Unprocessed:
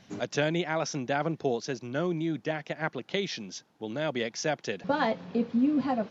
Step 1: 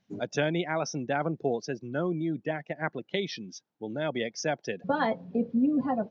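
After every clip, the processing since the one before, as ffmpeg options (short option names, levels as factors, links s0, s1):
-af "afftdn=nr=19:nf=-38"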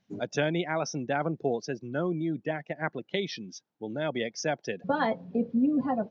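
-af anull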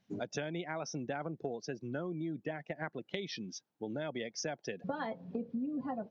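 -af "acompressor=threshold=0.02:ratio=6,volume=0.891"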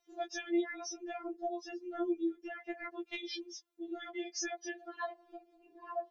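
-af "afftfilt=real='re*4*eq(mod(b,16),0)':imag='im*4*eq(mod(b,16),0)':win_size=2048:overlap=0.75,volume=1.41"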